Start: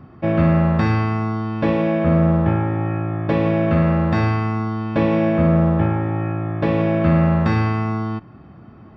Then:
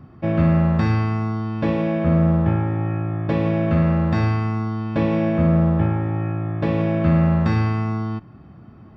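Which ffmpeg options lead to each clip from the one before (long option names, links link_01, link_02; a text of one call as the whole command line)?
ffmpeg -i in.wav -af "bass=frequency=250:gain=4,treble=frequency=4000:gain=4,volume=-4dB" out.wav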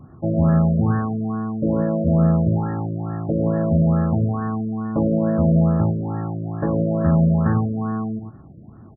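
ffmpeg -i in.wav -af "aecho=1:1:105:0.398,afftfilt=real='re*lt(b*sr/1024,630*pow(1900/630,0.5+0.5*sin(2*PI*2.3*pts/sr)))':imag='im*lt(b*sr/1024,630*pow(1900/630,0.5+0.5*sin(2*PI*2.3*pts/sr)))':win_size=1024:overlap=0.75" out.wav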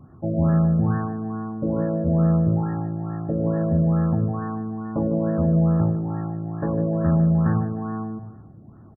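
ffmpeg -i in.wav -af "aecho=1:1:152|304|456|608:0.266|0.0958|0.0345|0.0124,volume=-3.5dB" out.wav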